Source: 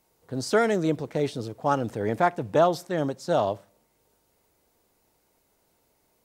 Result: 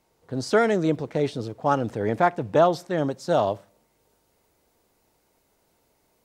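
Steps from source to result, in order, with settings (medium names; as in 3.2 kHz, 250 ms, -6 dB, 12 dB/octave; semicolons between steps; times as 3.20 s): treble shelf 9.2 kHz -11.5 dB, from 3.11 s -4 dB; trim +2 dB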